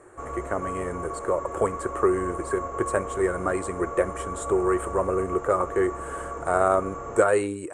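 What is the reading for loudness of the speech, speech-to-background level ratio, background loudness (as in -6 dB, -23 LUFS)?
-26.5 LUFS, 8.0 dB, -34.5 LUFS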